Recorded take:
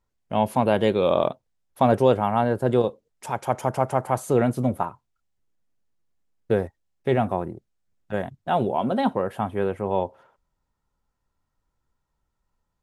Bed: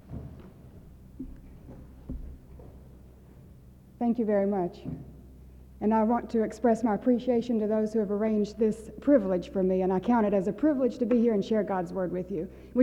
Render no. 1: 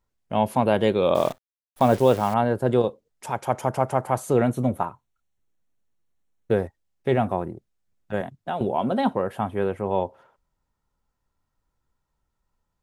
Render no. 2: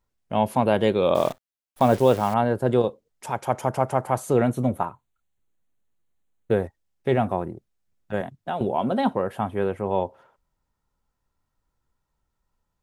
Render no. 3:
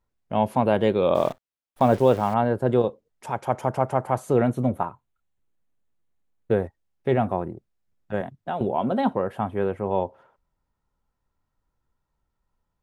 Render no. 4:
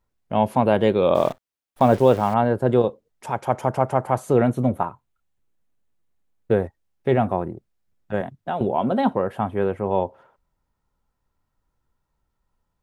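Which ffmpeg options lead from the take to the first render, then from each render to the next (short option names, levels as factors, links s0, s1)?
-filter_complex "[0:a]asettb=1/sr,asplit=3[s0][s1][s2];[s0]atrim=end=1.154[s3];[s1]atrim=start=1.15:end=2.34,asetpts=PTS-STARTPTS,afade=t=in:d=0.004:c=qsin,afade=t=out:st=1.186:d=0.004:c=qsin,acrusher=bits=7:dc=4:mix=0:aa=0.000001[s4];[s2]atrim=start=2.336[s5];[s3][s4]acrossfade=d=0.004:c1=hsin:c2=qsin[s6];[s6][s5]acrossfade=d=0.004:c1=qsin:c2=hsin,asettb=1/sr,asplit=3[s7][s8][s9];[s7]atrim=end=4.464[s10];[s8]atrim=start=4.46:end=6.52,asetpts=PTS-STARTPTS,afade=t=in:d=0.004:c=qsin,afade=t=out:st=2.056:d=0.004:c=qsin,asuperstop=centerf=4900:order=20:qfactor=7.1[s11];[s9]atrim=start=6.516[s12];[s10][s11]acrossfade=d=0.004:c1=hsin:c2=qsin[s13];[s13][s12]acrossfade=d=0.004:c1=qsin:c2=hsin,asettb=1/sr,asplit=3[s14][s15][s16];[s14]atrim=end=8.214[s17];[s15]atrim=start=8.21:end=8.61,asetpts=PTS-STARTPTS,afade=t=in:d=0.004:c=qsin,afade=t=out:st=0.396:d=0.004:c=qsin,acrossover=split=120|1400[s18][s19][s20];[s18]acompressor=threshold=0.00141:ratio=4[s21];[s19]acompressor=threshold=0.0447:ratio=4[s22];[s20]acompressor=threshold=0.01:ratio=4[s23];[s21][s22][s23]amix=inputs=3:normalize=0[s24];[s16]atrim=start=8.606[s25];[s17][s24]acrossfade=d=0.004:c1=hsin:c2=qsin[s26];[s26][s25]acrossfade=d=0.004:c1=qsin:c2=hsin"
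-filter_complex "[0:a]asettb=1/sr,asplit=3[s0][s1][s2];[s0]atrim=end=4.784[s3];[s1]atrim=start=4.78:end=6.64,asetpts=PTS-STARTPTS,afade=t=in:d=0.004:c=qsin,afade=t=out:st=1.856:d=0.004:c=qsin,asuperstop=centerf=5200:order=4:qfactor=3.5[s4];[s2]atrim=start=6.636[s5];[s3][s4]acrossfade=d=0.004:c1=hsin:c2=qsin[s6];[s6][s5]acrossfade=d=0.004:c1=qsin:c2=hsin"
-af "highshelf=f=3600:g=-8"
-af "volume=1.33"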